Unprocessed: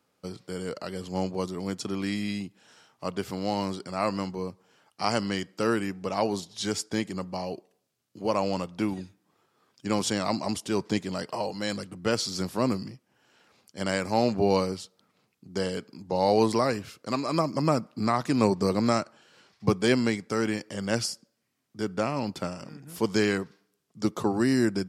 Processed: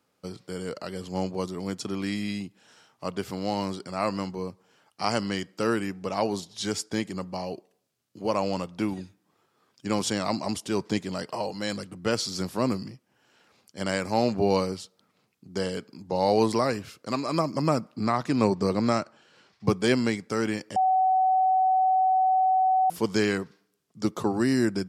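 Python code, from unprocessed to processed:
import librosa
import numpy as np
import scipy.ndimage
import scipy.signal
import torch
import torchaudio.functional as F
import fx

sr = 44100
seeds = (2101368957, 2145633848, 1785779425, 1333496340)

y = fx.high_shelf(x, sr, hz=10000.0, db=-11.5, at=(17.96, 19.65))
y = fx.edit(y, sr, fx.bleep(start_s=20.76, length_s=2.14, hz=753.0, db=-18.5), tone=tone)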